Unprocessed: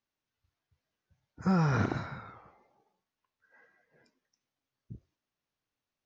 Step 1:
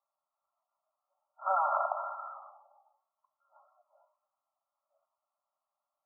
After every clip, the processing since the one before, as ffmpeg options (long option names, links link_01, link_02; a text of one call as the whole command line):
ffmpeg -i in.wav -af "afftfilt=real='re*between(b*sr/4096,550,1400)':imag='im*between(b*sr/4096,550,1400)':win_size=4096:overlap=0.75,volume=7.5dB" out.wav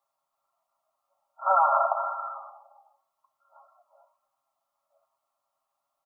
ffmpeg -i in.wav -af "aecho=1:1:7.4:0.45,volume=6.5dB" out.wav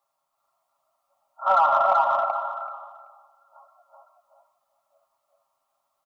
ffmpeg -i in.wav -filter_complex "[0:a]asplit=2[link_01][link_02];[link_02]asoftclip=type=tanh:threshold=-20.5dB,volume=-5.5dB[link_03];[link_01][link_03]amix=inputs=2:normalize=0,aecho=1:1:382|764|1146:0.708|0.127|0.0229" out.wav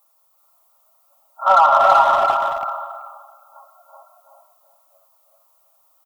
ffmpeg -i in.wav -filter_complex "[0:a]aemphasis=mode=production:type=50fm,asplit=2[link_01][link_02];[link_02]adelay=330,highpass=300,lowpass=3400,asoftclip=type=hard:threshold=-19dB,volume=-8dB[link_03];[link_01][link_03]amix=inputs=2:normalize=0,volume=6.5dB" out.wav